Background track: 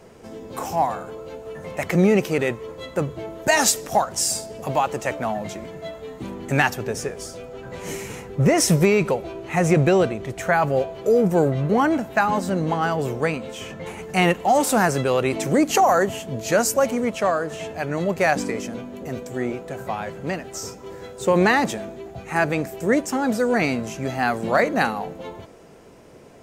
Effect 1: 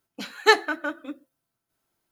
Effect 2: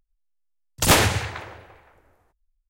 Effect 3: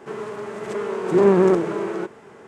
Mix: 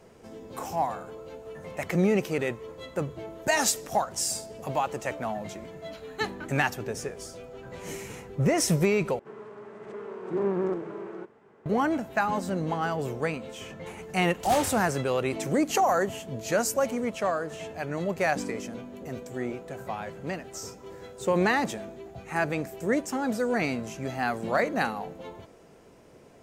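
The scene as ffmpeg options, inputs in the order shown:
ffmpeg -i bed.wav -i cue0.wav -i cue1.wav -i cue2.wav -filter_complex "[0:a]volume=-6.5dB[link_01];[3:a]lowpass=frequency=2000:poles=1[link_02];[2:a]flanger=delay=22.5:depth=5:speed=1[link_03];[link_01]asplit=2[link_04][link_05];[link_04]atrim=end=9.194[link_06];[link_02]atrim=end=2.47,asetpts=PTS-STARTPTS,volume=-12dB[link_07];[link_05]atrim=start=11.656[link_08];[1:a]atrim=end=2.11,asetpts=PTS-STARTPTS,volume=-14dB,afade=type=in:duration=0.004:curve=hsin,afade=type=out:start_time=2.106:duration=0.004:curve=hsin,adelay=5720[link_09];[link_03]atrim=end=2.69,asetpts=PTS-STARTPTS,volume=-14dB,afade=type=in:duration=0.004:curve=hsin,afade=type=out:start_time=2.686:duration=0.004:curve=hsin,adelay=13610[link_10];[link_06][link_07]acrossfade=duration=0.004:curve1=hsin:curve2=hsin[link_11];[link_11][link_08]acrossfade=duration=0.004:curve1=hsin:curve2=hsin[link_12];[link_12][link_09][link_10]amix=inputs=3:normalize=0" out.wav

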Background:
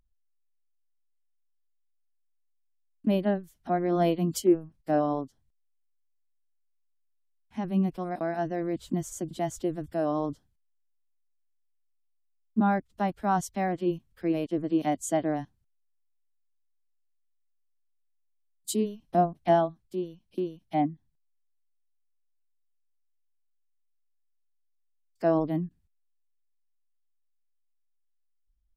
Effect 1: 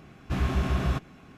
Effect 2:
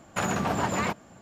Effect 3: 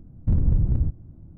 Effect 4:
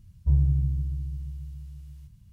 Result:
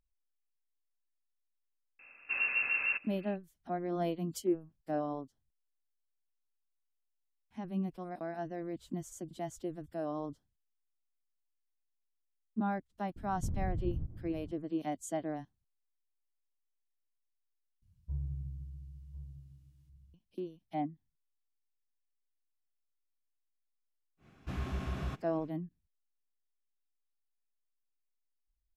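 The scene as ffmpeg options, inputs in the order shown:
ffmpeg -i bed.wav -i cue0.wav -i cue1.wav -i cue2.wav -i cue3.wav -filter_complex "[1:a]asplit=2[link_01][link_02];[0:a]volume=-9.5dB[link_03];[link_01]lowpass=frequency=2400:width_type=q:width=0.5098,lowpass=frequency=2400:width_type=q:width=0.6013,lowpass=frequency=2400:width_type=q:width=0.9,lowpass=frequency=2400:width_type=q:width=2.563,afreqshift=-2800[link_04];[3:a]acompressor=threshold=-30dB:ratio=6:attack=3.2:release=140:knee=1:detection=peak[link_05];[4:a]asplit=2[link_06][link_07];[link_07]adelay=1050,volume=-11dB,highshelf=frequency=4000:gain=-23.6[link_08];[link_06][link_08]amix=inputs=2:normalize=0[link_09];[link_03]asplit=2[link_10][link_11];[link_10]atrim=end=17.824[link_12];[link_09]atrim=end=2.32,asetpts=PTS-STARTPTS,volume=-16.5dB[link_13];[link_11]atrim=start=20.136[link_14];[link_04]atrim=end=1.37,asetpts=PTS-STARTPTS,volume=-7dB,afade=type=in:duration=0.004:curve=hsin,afade=type=out:start_time=1.366:duration=0.004:curve=hsin,adelay=1990[link_15];[link_05]atrim=end=1.37,asetpts=PTS-STARTPTS,volume=-3dB,afade=type=in:duration=0.004:curve=hsin,afade=type=out:start_time=1.366:duration=0.004:curve=hsin,adelay=580356S[link_16];[link_02]atrim=end=1.37,asetpts=PTS-STARTPTS,volume=-11dB,afade=type=in:duration=0.1,afade=type=out:start_time=1.27:duration=0.1,adelay=24170[link_17];[link_12][link_13]acrossfade=duration=0.004:curve1=hsin:curve2=hsin[link_18];[link_18][link_14]acrossfade=duration=0.004:curve1=hsin:curve2=hsin[link_19];[link_19][link_15][link_16][link_17]amix=inputs=4:normalize=0" out.wav

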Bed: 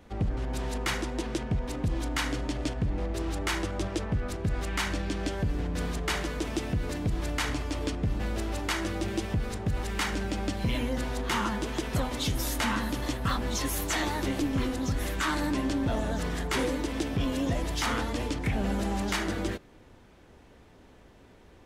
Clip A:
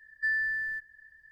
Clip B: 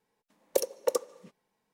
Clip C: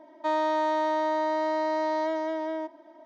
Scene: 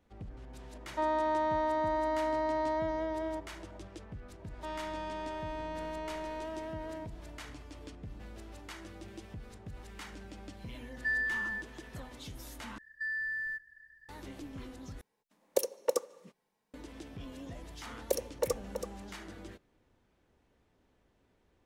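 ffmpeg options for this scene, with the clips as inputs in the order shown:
ffmpeg -i bed.wav -i cue0.wav -i cue1.wav -i cue2.wav -filter_complex "[3:a]asplit=2[link_01][link_02];[1:a]asplit=2[link_03][link_04];[2:a]asplit=2[link_05][link_06];[0:a]volume=-16.5dB[link_07];[link_01]acrossover=split=2600[link_08][link_09];[link_09]acompressor=threshold=-52dB:ratio=4:attack=1:release=60[link_10];[link_08][link_10]amix=inputs=2:normalize=0[link_11];[link_02]asoftclip=type=tanh:threshold=-29dB[link_12];[link_03]aresample=32000,aresample=44100[link_13];[link_04]alimiter=level_in=5dB:limit=-24dB:level=0:latency=1:release=321,volume=-5dB[link_14];[link_06]aecho=1:1:328:0.422[link_15];[link_07]asplit=3[link_16][link_17][link_18];[link_16]atrim=end=12.784[link_19];[link_14]atrim=end=1.31,asetpts=PTS-STARTPTS,volume=-2.5dB[link_20];[link_17]atrim=start=14.086:end=15.014[link_21];[link_05]atrim=end=1.73,asetpts=PTS-STARTPTS,volume=-2.5dB[link_22];[link_18]atrim=start=16.736[link_23];[link_11]atrim=end=3.05,asetpts=PTS-STARTPTS,volume=-4.5dB,afade=type=in:duration=0.004:curve=hsin,afade=type=out:start_time=3.046:duration=0.004:curve=hsin,adelay=730[link_24];[link_12]atrim=end=3.05,asetpts=PTS-STARTPTS,volume=-8.5dB,afade=type=in:duration=0.004:curve=hsin,afade=type=out:start_time=3.046:duration=0.004:curve=hsin,adelay=4390[link_25];[link_13]atrim=end=1.31,asetpts=PTS-STARTPTS,volume=-3dB,afade=type=in:duration=0.004:curve=hsin,afade=type=out:start_time=1.306:duration=0.004:curve=hsin,adelay=477162S[link_26];[link_15]atrim=end=1.73,asetpts=PTS-STARTPTS,volume=-4.5dB,afade=type=in:duration=0.004:curve=hsin,afade=type=out:start_time=1.726:duration=0.004:curve=hsin,adelay=17550[link_27];[link_19][link_20]acrossfade=duration=0.004:curve1=hsin:curve2=hsin[link_28];[link_28][link_21]acrossfade=duration=0.004:curve1=hsin:curve2=hsin[link_29];[link_29][link_22]acrossfade=duration=0.004:curve1=hsin:curve2=hsin[link_30];[link_30][link_23]acrossfade=duration=0.004:curve1=hsin:curve2=hsin[link_31];[link_31][link_24][link_25][link_26][link_27]amix=inputs=5:normalize=0" out.wav

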